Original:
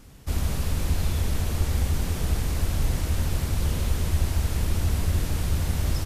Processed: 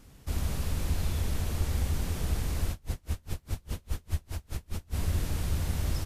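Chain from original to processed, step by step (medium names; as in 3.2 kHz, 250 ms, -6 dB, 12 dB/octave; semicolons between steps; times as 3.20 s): 2.71–4.96 s: logarithmic tremolo 4.9 Hz, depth 35 dB; trim -5 dB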